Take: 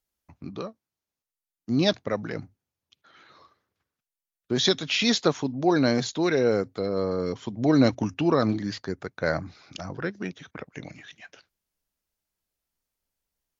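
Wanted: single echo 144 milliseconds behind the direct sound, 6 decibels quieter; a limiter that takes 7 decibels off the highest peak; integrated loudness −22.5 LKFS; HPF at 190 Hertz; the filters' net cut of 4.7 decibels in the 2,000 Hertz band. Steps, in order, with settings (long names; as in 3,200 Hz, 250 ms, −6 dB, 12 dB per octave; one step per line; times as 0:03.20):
high-pass filter 190 Hz
parametric band 2,000 Hz −6.5 dB
brickwall limiter −15.5 dBFS
single-tap delay 144 ms −6 dB
level +5 dB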